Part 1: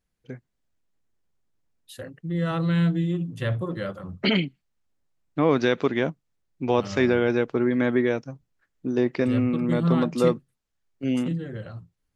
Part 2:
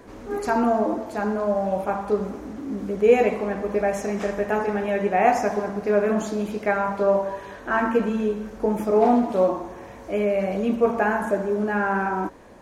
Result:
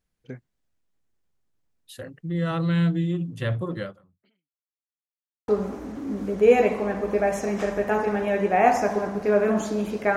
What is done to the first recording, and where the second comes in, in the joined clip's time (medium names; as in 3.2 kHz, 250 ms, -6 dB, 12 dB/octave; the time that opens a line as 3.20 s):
part 1
3.82–4.80 s: fade out exponential
4.80–5.48 s: mute
5.48 s: go over to part 2 from 2.09 s